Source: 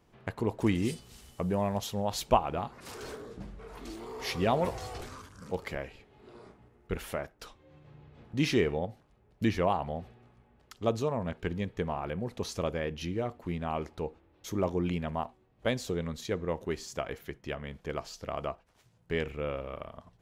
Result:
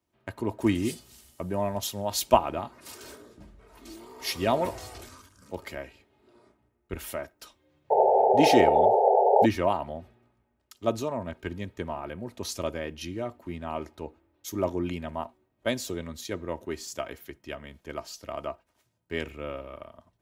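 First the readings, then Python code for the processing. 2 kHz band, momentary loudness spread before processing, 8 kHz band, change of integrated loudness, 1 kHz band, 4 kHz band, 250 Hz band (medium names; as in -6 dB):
+2.0 dB, 16 LU, +6.5 dB, +6.0 dB, +9.0 dB, +4.0 dB, +2.5 dB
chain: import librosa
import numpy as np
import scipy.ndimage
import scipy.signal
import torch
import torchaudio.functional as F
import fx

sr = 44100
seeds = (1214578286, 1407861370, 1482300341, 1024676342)

y = scipy.signal.sosfilt(scipy.signal.butter(2, 67.0, 'highpass', fs=sr, output='sos'), x)
y = fx.high_shelf(y, sr, hz=9400.0, db=10.0)
y = y + 0.46 * np.pad(y, (int(3.2 * sr / 1000.0), 0))[:len(y)]
y = fx.spec_paint(y, sr, seeds[0], shape='noise', start_s=7.9, length_s=1.56, low_hz=380.0, high_hz=910.0, level_db=-23.0)
y = fx.band_widen(y, sr, depth_pct=40)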